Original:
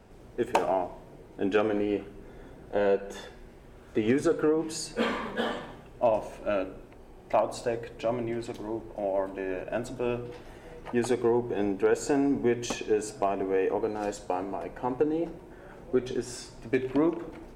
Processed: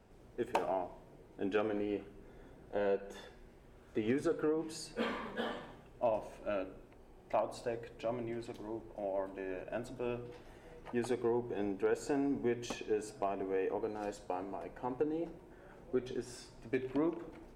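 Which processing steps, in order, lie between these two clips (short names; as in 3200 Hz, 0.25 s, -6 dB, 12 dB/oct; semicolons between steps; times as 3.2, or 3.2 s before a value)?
dynamic EQ 7000 Hz, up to -4 dB, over -55 dBFS, Q 1.9; gain -8.5 dB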